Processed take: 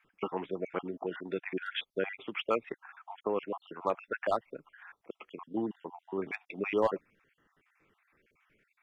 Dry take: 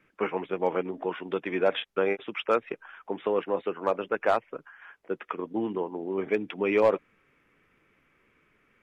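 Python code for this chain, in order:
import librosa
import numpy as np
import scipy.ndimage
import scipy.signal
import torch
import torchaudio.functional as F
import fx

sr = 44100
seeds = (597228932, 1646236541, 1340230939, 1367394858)

y = fx.spec_dropout(x, sr, seeds[0], share_pct=46)
y = fx.dynamic_eq(y, sr, hz=490.0, q=2.2, threshold_db=-40.0, ratio=4.0, max_db=-4)
y = y * librosa.db_to_amplitude(-2.5)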